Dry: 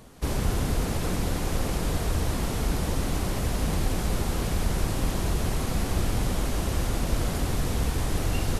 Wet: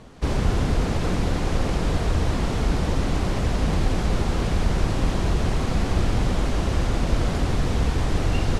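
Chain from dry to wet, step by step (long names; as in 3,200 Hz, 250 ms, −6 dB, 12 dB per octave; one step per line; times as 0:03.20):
high-frequency loss of the air 83 metres
level +4.5 dB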